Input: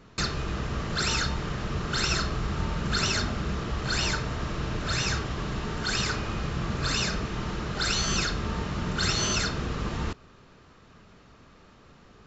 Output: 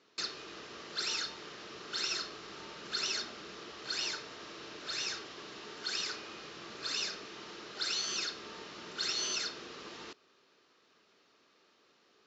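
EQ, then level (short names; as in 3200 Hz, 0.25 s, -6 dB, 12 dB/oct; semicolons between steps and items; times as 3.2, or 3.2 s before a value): LPF 5500 Hz 24 dB/oct; differentiator; bell 360 Hz +14.5 dB 1.6 oct; 0.0 dB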